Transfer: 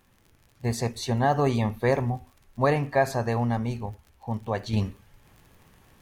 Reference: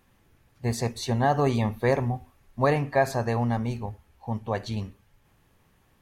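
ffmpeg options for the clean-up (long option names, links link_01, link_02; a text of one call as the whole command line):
ffmpeg -i in.wav -af "adeclick=threshold=4,asetnsamples=nb_out_samples=441:pad=0,asendcmd='4.73 volume volume -6.5dB',volume=0dB" out.wav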